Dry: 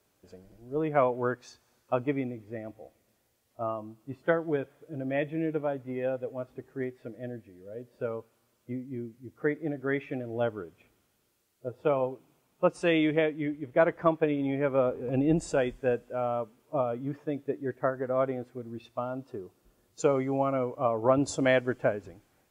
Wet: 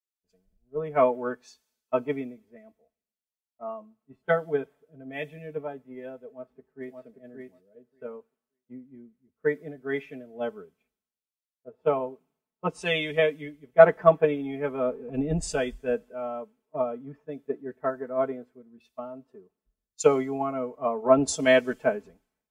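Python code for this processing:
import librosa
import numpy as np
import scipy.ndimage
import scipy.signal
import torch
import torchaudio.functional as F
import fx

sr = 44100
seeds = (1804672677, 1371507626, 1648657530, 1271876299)

y = fx.echo_throw(x, sr, start_s=6.29, length_s=0.73, ms=580, feedback_pct=20, wet_db=-2.5)
y = y + 0.94 * np.pad(y, (int(4.6 * sr / 1000.0), 0))[:len(y)]
y = fx.band_widen(y, sr, depth_pct=100)
y = F.gain(torch.from_numpy(y), -4.0).numpy()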